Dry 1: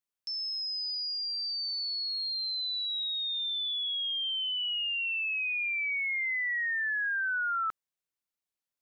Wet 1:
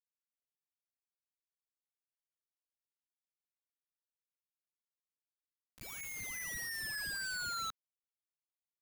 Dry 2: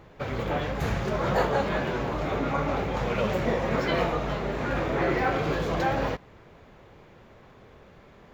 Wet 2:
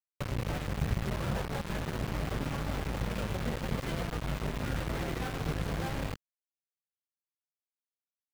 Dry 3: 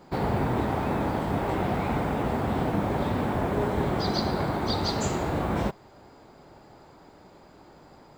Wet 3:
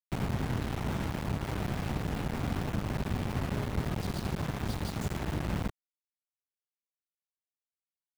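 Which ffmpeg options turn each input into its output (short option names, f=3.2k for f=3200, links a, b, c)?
-af "acompressor=threshold=-30dB:ratio=4,acrusher=bits=4:mix=0:aa=0.000001,bass=f=250:g=12,treble=f=4k:g=-5,volume=-7dB"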